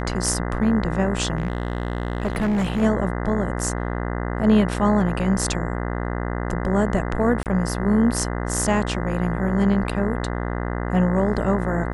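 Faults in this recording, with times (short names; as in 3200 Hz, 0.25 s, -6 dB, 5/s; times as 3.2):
buzz 60 Hz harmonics 34 -26 dBFS
1.37–2.83 clipped -18 dBFS
7.43–7.46 gap 28 ms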